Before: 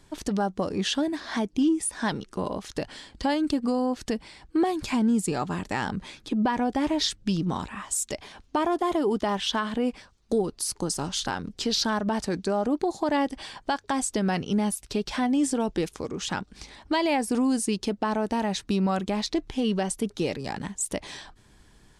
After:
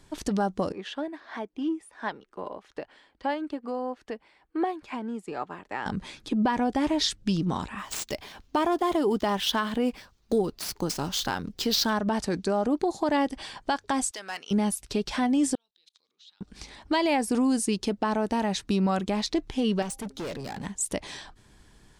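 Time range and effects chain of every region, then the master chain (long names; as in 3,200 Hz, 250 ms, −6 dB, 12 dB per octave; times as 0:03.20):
0:00.72–0:05.86: three-way crossover with the lows and the highs turned down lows −14 dB, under 330 Hz, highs −15 dB, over 2,900 Hz + expander for the loud parts, over −41 dBFS
0:07.78–0:11.93: running median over 5 samples + high-shelf EQ 4,000 Hz +5 dB
0:14.11–0:14.51: Bessel high-pass filter 1,300 Hz + hard clipping −27.5 dBFS
0:15.55–0:16.41: output level in coarse steps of 22 dB + resonant band-pass 3,900 Hz, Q 7.5
0:19.82–0:20.66: hum removal 265.8 Hz, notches 3 + gain into a clipping stage and back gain 31.5 dB
whole clip: no processing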